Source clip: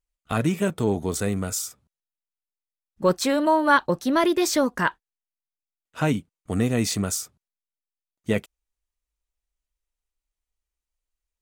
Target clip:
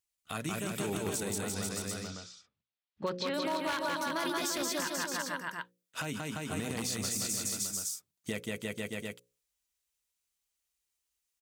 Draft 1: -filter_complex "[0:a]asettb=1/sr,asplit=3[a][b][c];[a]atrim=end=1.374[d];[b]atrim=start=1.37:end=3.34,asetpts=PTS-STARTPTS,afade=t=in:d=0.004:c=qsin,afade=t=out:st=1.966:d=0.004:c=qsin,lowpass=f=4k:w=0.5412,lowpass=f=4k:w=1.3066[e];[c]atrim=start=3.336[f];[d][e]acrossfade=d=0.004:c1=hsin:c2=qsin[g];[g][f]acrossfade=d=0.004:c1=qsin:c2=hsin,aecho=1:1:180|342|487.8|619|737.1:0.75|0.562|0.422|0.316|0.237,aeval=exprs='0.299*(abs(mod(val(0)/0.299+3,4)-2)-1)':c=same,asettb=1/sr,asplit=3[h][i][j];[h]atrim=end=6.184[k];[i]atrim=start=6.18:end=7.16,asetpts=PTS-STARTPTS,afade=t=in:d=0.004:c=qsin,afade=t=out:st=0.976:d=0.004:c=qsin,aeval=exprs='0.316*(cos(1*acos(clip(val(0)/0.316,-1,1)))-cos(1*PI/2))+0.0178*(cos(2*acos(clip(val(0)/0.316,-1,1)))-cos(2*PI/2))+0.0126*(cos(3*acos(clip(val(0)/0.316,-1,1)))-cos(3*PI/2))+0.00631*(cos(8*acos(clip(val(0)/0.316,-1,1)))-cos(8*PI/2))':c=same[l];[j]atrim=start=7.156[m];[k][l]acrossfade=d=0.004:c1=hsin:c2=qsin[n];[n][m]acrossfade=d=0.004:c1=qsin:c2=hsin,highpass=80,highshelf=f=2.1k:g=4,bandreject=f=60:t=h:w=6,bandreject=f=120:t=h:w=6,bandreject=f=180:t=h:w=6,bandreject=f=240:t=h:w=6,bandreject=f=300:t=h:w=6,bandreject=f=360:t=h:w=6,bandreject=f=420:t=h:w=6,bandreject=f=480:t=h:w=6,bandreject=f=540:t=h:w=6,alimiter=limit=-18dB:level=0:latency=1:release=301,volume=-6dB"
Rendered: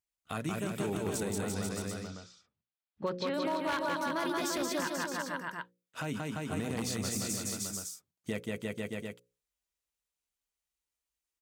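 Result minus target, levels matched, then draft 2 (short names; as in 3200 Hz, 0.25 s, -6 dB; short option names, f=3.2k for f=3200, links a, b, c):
4000 Hz band -3.0 dB
-filter_complex "[0:a]asettb=1/sr,asplit=3[a][b][c];[a]atrim=end=1.374[d];[b]atrim=start=1.37:end=3.34,asetpts=PTS-STARTPTS,afade=t=in:d=0.004:c=qsin,afade=t=out:st=1.966:d=0.004:c=qsin,lowpass=f=4k:w=0.5412,lowpass=f=4k:w=1.3066[e];[c]atrim=start=3.336[f];[d][e]acrossfade=d=0.004:c1=hsin:c2=qsin[g];[g][f]acrossfade=d=0.004:c1=qsin:c2=hsin,aecho=1:1:180|342|487.8|619|737.1:0.75|0.562|0.422|0.316|0.237,aeval=exprs='0.299*(abs(mod(val(0)/0.299+3,4)-2)-1)':c=same,asettb=1/sr,asplit=3[h][i][j];[h]atrim=end=6.184[k];[i]atrim=start=6.18:end=7.16,asetpts=PTS-STARTPTS,afade=t=in:d=0.004:c=qsin,afade=t=out:st=0.976:d=0.004:c=qsin,aeval=exprs='0.316*(cos(1*acos(clip(val(0)/0.316,-1,1)))-cos(1*PI/2))+0.0178*(cos(2*acos(clip(val(0)/0.316,-1,1)))-cos(2*PI/2))+0.0126*(cos(3*acos(clip(val(0)/0.316,-1,1)))-cos(3*PI/2))+0.00631*(cos(8*acos(clip(val(0)/0.316,-1,1)))-cos(8*PI/2))':c=same[l];[j]atrim=start=7.156[m];[k][l]acrossfade=d=0.004:c1=hsin:c2=qsin[n];[n][m]acrossfade=d=0.004:c1=qsin:c2=hsin,highpass=80,highshelf=f=2.1k:g=12,bandreject=f=60:t=h:w=6,bandreject=f=120:t=h:w=6,bandreject=f=180:t=h:w=6,bandreject=f=240:t=h:w=6,bandreject=f=300:t=h:w=6,bandreject=f=360:t=h:w=6,bandreject=f=420:t=h:w=6,bandreject=f=480:t=h:w=6,bandreject=f=540:t=h:w=6,alimiter=limit=-18dB:level=0:latency=1:release=301,volume=-6dB"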